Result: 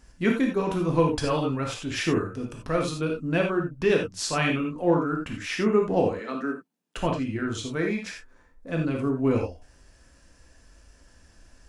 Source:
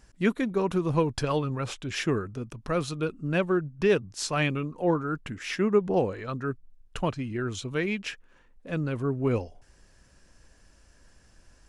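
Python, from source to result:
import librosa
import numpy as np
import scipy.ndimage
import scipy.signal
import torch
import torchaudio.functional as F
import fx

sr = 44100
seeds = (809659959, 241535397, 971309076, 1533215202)

y = fx.steep_highpass(x, sr, hz=170.0, slope=48, at=(6.11, 6.97))
y = fx.peak_eq(y, sr, hz=2900.0, db=-14.5, octaves=0.42, at=(7.73, 8.71))
y = fx.rev_gated(y, sr, seeds[0], gate_ms=110, shape='flat', drr_db=0.5)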